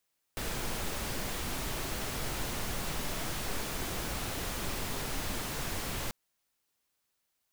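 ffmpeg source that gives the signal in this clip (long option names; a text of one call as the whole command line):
ffmpeg -f lavfi -i "anoisesrc=color=pink:amplitude=0.0912:duration=5.74:sample_rate=44100:seed=1" out.wav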